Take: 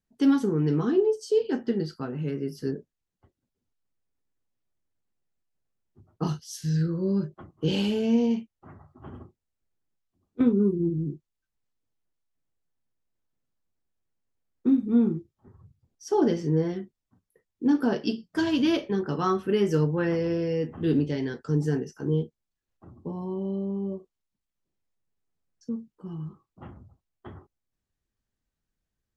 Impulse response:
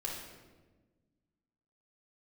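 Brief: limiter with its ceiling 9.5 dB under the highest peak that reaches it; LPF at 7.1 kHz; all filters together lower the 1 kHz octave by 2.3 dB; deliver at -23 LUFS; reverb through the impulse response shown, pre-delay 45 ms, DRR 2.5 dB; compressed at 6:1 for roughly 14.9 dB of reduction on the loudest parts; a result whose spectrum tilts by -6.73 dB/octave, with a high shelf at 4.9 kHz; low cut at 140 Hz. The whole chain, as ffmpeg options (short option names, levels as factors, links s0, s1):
-filter_complex "[0:a]highpass=140,lowpass=7100,equalizer=f=1000:t=o:g=-3.5,highshelf=f=4900:g=7.5,acompressor=threshold=0.02:ratio=6,alimiter=level_in=2.11:limit=0.0631:level=0:latency=1,volume=0.473,asplit=2[s0][s1];[1:a]atrim=start_sample=2205,adelay=45[s2];[s1][s2]afir=irnorm=-1:irlink=0,volume=0.596[s3];[s0][s3]amix=inputs=2:normalize=0,volume=5.96"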